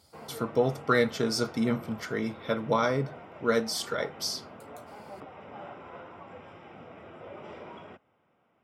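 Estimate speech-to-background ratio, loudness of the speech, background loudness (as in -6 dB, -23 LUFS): 16.5 dB, -29.5 LUFS, -46.0 LUFS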